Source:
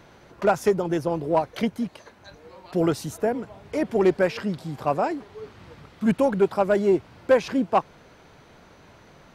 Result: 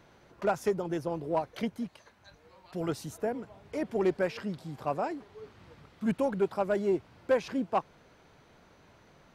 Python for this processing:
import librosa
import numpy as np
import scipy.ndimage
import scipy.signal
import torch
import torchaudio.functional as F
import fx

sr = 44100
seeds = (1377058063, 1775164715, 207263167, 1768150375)

y = fx.peak_eq(x, sr, hz=370.0, db=-5.5, octaves=1.9, at=(1.86, 2.89))
y = y * librosa.db_to_amplitude(-8.0)